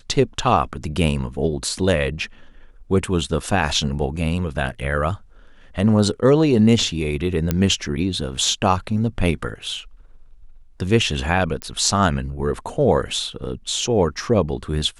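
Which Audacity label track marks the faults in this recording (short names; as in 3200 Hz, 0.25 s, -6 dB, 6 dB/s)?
7.510000	7.510000	pop -6 dBFS
11.620000	11.620000	pop -11 dBFS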